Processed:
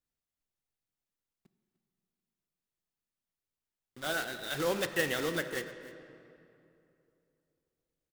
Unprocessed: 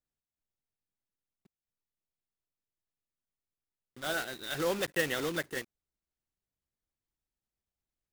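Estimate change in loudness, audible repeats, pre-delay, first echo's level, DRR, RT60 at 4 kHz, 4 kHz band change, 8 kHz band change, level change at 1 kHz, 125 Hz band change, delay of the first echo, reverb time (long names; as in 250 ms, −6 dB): 0.0 dB, 1, 8 ms, −18.5 dB, 9.0 dB, 1.7 s, +0.5 dB, 0.0 dB, +0.5 dB, +0.5 dB, 299 ms, 2.8 s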